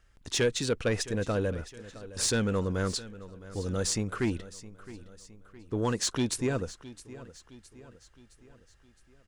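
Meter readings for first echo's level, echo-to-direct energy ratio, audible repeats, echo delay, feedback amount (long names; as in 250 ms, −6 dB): −17.0 dB, −16.0 dB, 3, 664 ms, 50%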